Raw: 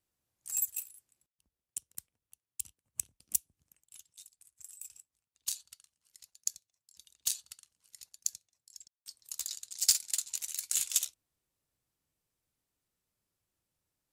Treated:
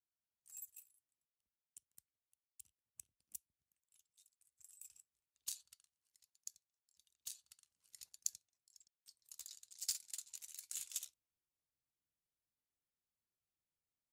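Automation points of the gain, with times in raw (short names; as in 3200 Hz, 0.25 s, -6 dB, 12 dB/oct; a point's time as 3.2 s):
3.95 s -20 dB
4.91 s -9 dB
5.65 s -9 dB
6.23 s -16.5 dB
7.39 s -16.5 dB
8.05 s -3.5 dB
8.78 s -14.5 dB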